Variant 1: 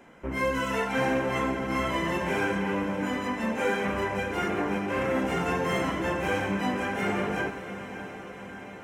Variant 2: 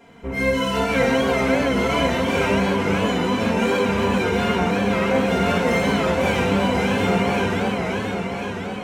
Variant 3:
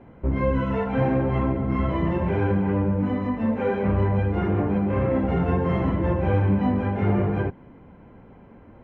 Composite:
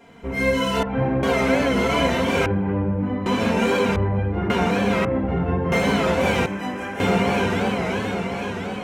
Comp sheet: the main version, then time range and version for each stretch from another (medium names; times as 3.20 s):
2
0.83–1.23 s: from 3
2.46–3.26 s: from 3
3.96–4.50 s: from 3
5.05–5.72 s: from 3
6.46–7.00 s: from 1